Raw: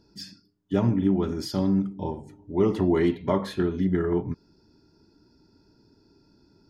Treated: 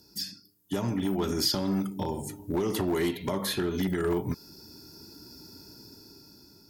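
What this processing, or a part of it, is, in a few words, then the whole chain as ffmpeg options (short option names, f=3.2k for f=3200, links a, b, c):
FM broadcast chain: -filter_complex "[0:a]highpass=55,dynaudnorm=f=390:g=7:m=11dB,acrossover=split=440|4800[a][b][c];[a]acompressor=threshold=-27dB:ratio=4[d];[b]acompressor=threshold=-29dB:ratio=4[e];[c]acompressor=threshold=-59dB:ratio=4[f];[d][e][f]amix=inputs=3:normalize=0,aemphasis=mode=production:type=50fm,alimiter=limit=-18dB:level=0:latency=1:release=144,asoftclip=type=hard:threshold=-21.5dB,lowpass=f=15k:w=0.5412,lowpass=f=15k:w=1.3066,aemphasis=mode=production:type=50fm"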